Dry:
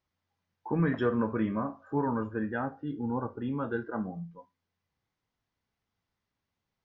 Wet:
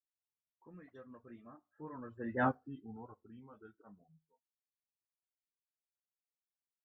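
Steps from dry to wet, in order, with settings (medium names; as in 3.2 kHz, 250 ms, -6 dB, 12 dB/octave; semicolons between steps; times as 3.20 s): Doppler pass-by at 2.45 s, 23 m/s, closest 1.2 m; reverb removal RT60 0.56 s; phase dispersion highs, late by 40 ms, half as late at 2.3 kHz; trim +3.5 dB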